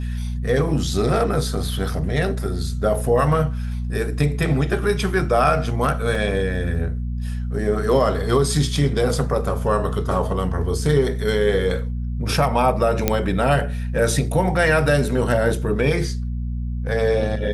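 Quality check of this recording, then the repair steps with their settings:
hum 60 Hz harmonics 4 -25 dBFS
6.15 s: dropout 2.9 ms
13.08 s: pop -2 dBFS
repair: de-click; de-hum 60 Hz, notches 4; interpolate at 6.15 s, 2.9 ms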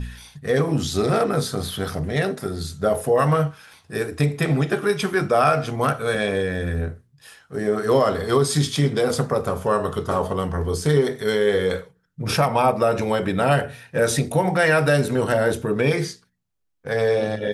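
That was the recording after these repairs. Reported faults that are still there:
nothing left

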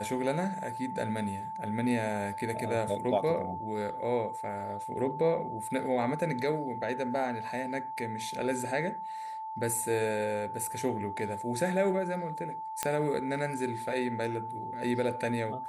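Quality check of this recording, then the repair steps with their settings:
whine 880 Hz -36 dBFS
12.83 s: pop -12 dBFS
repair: de-click; band-stop 880 Hz, Q 30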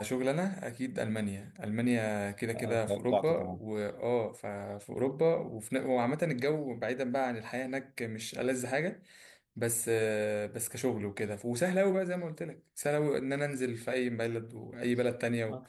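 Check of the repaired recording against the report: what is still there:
nothing left

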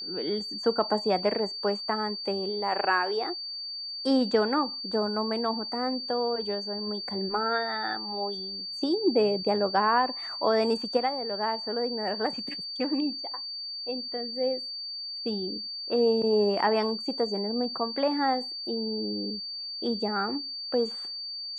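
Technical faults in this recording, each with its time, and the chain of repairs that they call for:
whine 4.6 kHz -34 dBFS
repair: band-stop 4.6 kHz, Q 30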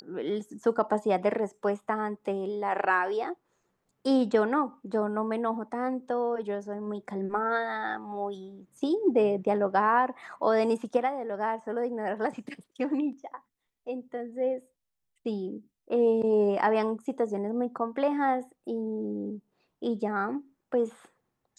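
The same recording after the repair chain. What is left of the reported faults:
nothing left

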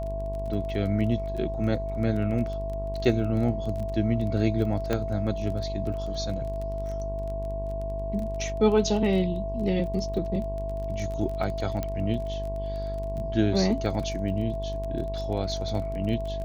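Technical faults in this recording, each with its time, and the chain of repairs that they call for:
buzz 50 Hz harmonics 22 -33 dBFS
crackle 22 per s -33 dBFS
whine 660 Hz -32 dBFS
4.93 s: pop -13 dBFS
11.83 s: pop -16 dBFS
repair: de-click; de-hum 50 Hz, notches 22; band-stop 660 Hz, Q 30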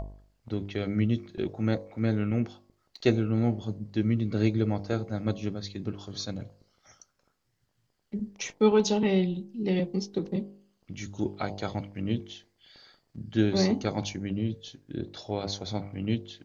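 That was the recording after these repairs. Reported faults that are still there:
nothing left

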